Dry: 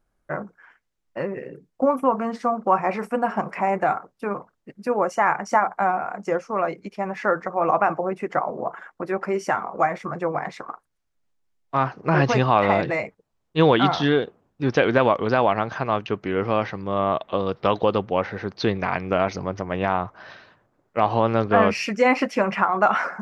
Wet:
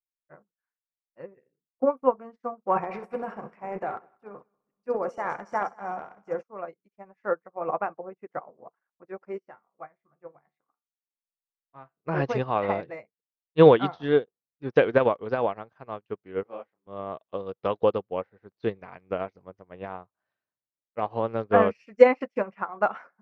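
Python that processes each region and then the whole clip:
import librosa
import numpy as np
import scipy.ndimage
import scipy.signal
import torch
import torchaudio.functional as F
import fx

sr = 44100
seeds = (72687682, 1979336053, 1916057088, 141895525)

y = fx.chain(x, sr, fx.transient(attack_db=-2, sustain_db=9),
    fx.echo_heads(ms=64, heads='first and third', feedback_pct=53, wet_db=-13.5), at=(2.7, 6.43))
y = fx.chain(y, sr, fx.lowpass(hz=4300.0, slope=12),
    fx.comb_fb(f0_hz=74.0, decay_s=0.33, harmonics='all', damping=0.0, mix_pct=60), at=(9.38, 12.05))
y = fx.chain(y, sr, fx.highpass(hz=330.0, slope=12),
    fx.tilt_eq(slope=-1.5),
    fx.detune_double(cents=60), at=(16.43, 16.87))
y = fx.dynamic_eq(y, sr, hz=470.0, q=2.7, threshold_db=-34.0, ratio=4.0, max_db=6)
y = fx.lowpass(y, sr, hz=3000.0, slope=6)
y = fx.upward_expand(y, sr, threshold_db=-38.0, expansion=2.5)
y = y * librosa.db_to_amplitude(1.5)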